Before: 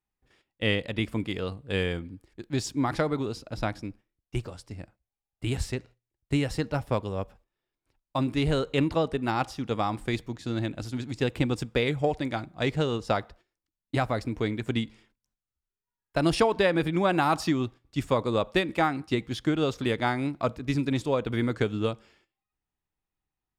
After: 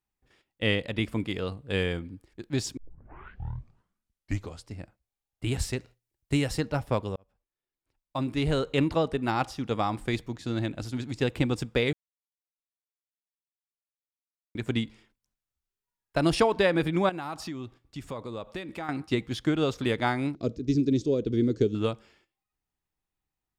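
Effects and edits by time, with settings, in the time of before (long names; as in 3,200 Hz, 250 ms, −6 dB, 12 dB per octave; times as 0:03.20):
0:02.77: tape start 1.91 s
0:05.59–0:06.60: high-shelf EQ 4,800 Hz +6 dB
0:07.16–0:08.65: fade in
0:11.93–0:14.55: silence
0:17.09–0:18.89: downward compressor 2.5 to 1, threshold −38 dBFS
0:20.35–0:21.75: drawn EQ curve 160 Hz 0 dB, 400 Hz +6 dB, 860 Hz −20 dB, 2,100 Hz −14 dB, 6,200 Hz +3 dB, 10,000 Hz −18 dB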